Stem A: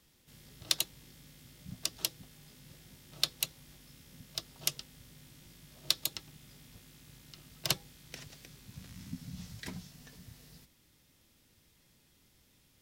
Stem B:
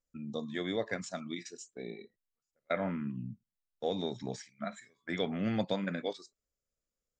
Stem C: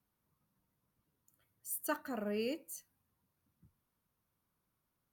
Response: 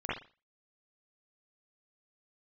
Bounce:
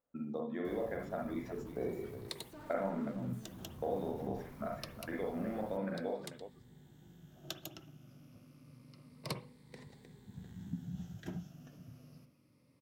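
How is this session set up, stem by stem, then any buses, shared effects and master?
-11.5 dB, 1.60 s, send -15 dB, no echo send, drifting ripple filter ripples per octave 0.94, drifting -0.27 Hz, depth 10 dB; high-pass 120 Hz 12 dB/octave
+0.5 dB, 0.00 s, send -3 dB, echo send -6.5 dB, compression 6:1, threshold -43 dBFS, peak gain reduction 15.5 dB; band-pass filter 1 kHz, Q 0.63; modulation noise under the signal 30 dB
-10.5 dB, 0.65 s, no send, echo send -12 dB, one-bit comparator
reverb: on, pre-delay 40 ms
echo: delay 367 ms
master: tilt shelf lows +9 dB, about 1.4 kHz; gain riding within 4 dB 2 s

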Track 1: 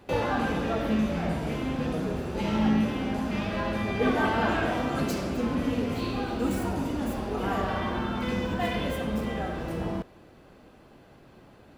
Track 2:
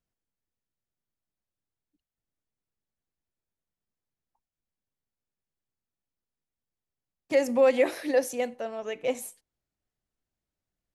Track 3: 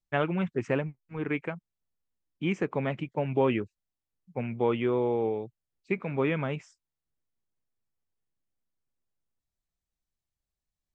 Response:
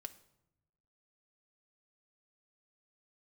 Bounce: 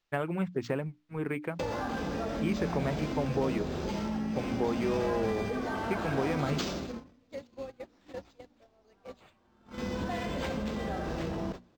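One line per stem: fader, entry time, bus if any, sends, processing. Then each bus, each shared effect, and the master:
-3.0 dB, 1.50 s, bus A, no send, level flattener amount 50%; auto duck -14 dB, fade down 0.75 s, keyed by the second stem
-4.0 dB, 0.00 s, bus A, no send, compression 6:1, threshold -31 dBFS, peak gain reduction 14 dB
+0.5 dB, 0.00 s, no bus, no send, compression, threshold -27 dBFS, peak gain reduction 7.5 dB
bus A: 0.0 dB, gate -33 dBFS, range -26 dB; compression, threshold -30 dBFS, peak gain reduction 8.5 dB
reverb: none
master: resonant high shelf 4.8 kHz +12 dB, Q 1.5; hum notches 60/120/180/240/300 Hz; decimation joined by straight lines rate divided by 4×

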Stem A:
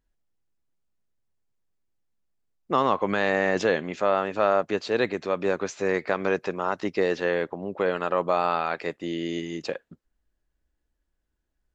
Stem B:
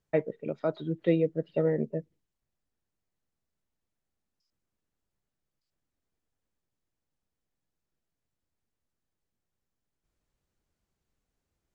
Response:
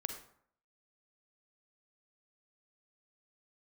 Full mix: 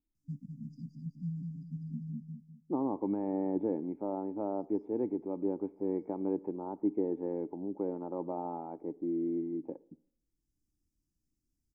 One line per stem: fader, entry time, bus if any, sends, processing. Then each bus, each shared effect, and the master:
+1.0 dB, 0.00 s, send -13.5 dB, no echo send, cascade formant filter u; level-controlled noise filter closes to 490 Hz, open at -30 dBFS
-3.0 dB, 0.15 s, no send, echo send -5.5 dB, FFT band-reject 280–4700 Hz; auto duck -9 dB, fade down 1.90 s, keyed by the first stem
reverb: on, RT60 0.65 s, pre-delay 37 ms
echo: feedback delay 201 ms, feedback 33%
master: none

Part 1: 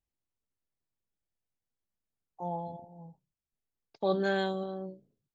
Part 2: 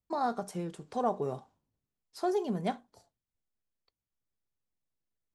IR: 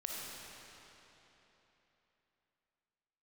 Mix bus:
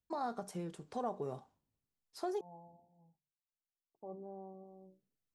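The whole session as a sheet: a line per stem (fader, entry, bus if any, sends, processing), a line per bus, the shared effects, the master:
-17.0 dB, 0.00 s, no send, rippled Chebyshev low-pass 1.1 kHz, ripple 3 dB; hum notches 50/100/150/200/250/300/350 Hz
-4.0 dB, 0.00 s, muted 2.41–4.66 s, no send, none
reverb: none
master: compression 2:1, threshold -37 dBFS, peak gain reduction 5.5 dB

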